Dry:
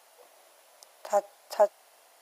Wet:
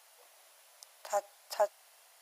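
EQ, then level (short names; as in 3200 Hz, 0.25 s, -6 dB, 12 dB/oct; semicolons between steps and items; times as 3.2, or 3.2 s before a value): HPF 1400 Hz 6 dB/oct; 0.0 dB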